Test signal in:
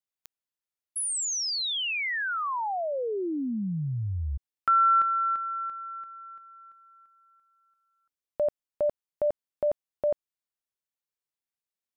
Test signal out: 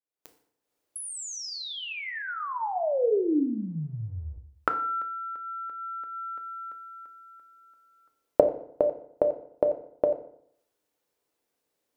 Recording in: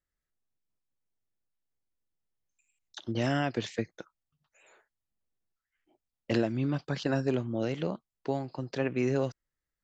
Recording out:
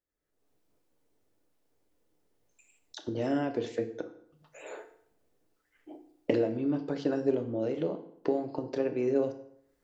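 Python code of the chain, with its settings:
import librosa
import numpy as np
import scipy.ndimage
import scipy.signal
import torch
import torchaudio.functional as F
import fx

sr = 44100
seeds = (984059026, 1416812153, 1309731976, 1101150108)

y = fx.recorder_agc(x, sr, target_db=-23.5, rise_db_per_s=44.0, max_gain_db=21)
y = fx.peak_eq(y, sr, hz=430.0, db=14.0, octaves=1.9)
y = fx.rev_fdn(y, sr, rt60_s=0.68, lf_ratio=1.05, hf_ratio=0.8, size_ms=20.0, drr_db=6.0)
y = y * 10.0 ** (-11.5 / 20.0)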